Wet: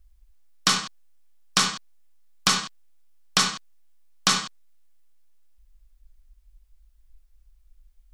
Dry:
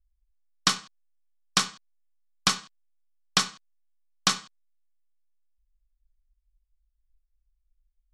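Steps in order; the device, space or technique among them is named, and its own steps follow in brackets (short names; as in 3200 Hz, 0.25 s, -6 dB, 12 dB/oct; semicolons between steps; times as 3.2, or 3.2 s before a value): loud club master (compressor 2.5:1, threshold -26 dBFS, peak gain reduction 7 dB; hard clip -12.5 dBFS, distortion -25 dB; maximiser +22.5 dB); gain -6.5 dB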